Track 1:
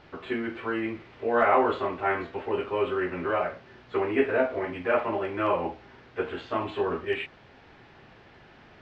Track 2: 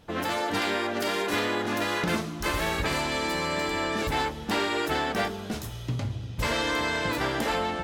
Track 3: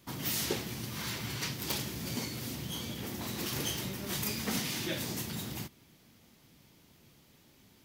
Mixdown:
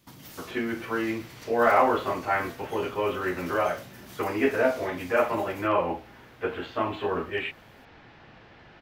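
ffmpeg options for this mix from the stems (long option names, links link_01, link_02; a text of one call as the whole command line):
ffmpeg -i stem1.wav -i stem2.wav -i stem3.wav -filter_complex "[0:a]adelay=250,volume=1.5dB[link_01];[2:a]acompressor=threshold=-43dB:ratio=5,volume=-2.5dB[link_02];[link_01][link_02]amix=inputs=2:normalize=0,bandreject=frequency=390:width=12" out.wav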